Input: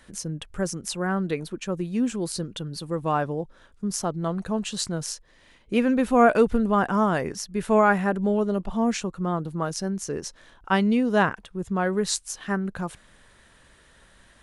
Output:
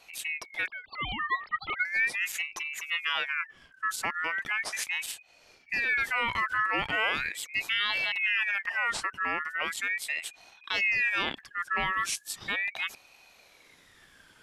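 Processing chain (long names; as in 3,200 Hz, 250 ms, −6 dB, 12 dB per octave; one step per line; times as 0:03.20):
0:00.66–0:01.85: three sine waves on the formant tracks
brickwall limiter −18 dBFS, peak gain reduction 11.5 dB
ring modulator whose carrier an LFO sweeps 2,000 Hz, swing 25%, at 0.38 Hz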